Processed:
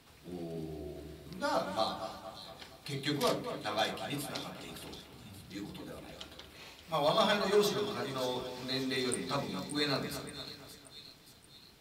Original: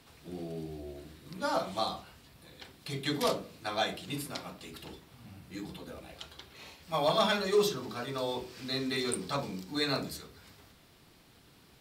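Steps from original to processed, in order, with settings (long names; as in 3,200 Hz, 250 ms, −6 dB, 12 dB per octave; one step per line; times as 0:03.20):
echo with a time of its own for lows and highs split 3,000 Hz, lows 232 ms, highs 577 ms, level −9.5 dB
level −1.5 dB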